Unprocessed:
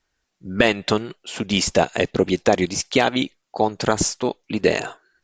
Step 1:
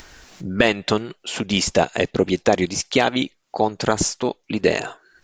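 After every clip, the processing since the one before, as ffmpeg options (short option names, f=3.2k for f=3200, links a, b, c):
-af "acompressor=mode=upward:threshold=-22dB:ratio=2.5"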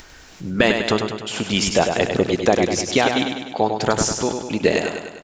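-af "aecho=1:1:100|200|300|400|500|600|700:0.501|0.286|0.163|0.0928|0.0529|0.0302|0.0172"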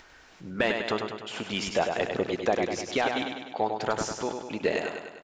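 -filter_complex "[0:a]asplit=2[a][b];[b]highpass=f=720:p=1,volume=9dB,asoftclip=type=tanh:threshold=-1.5dB[c];[a][c]amix=inputs=2:normalize=0,lowpass=f=1.9k:p=1,volume=-6dB,volume=-9dB"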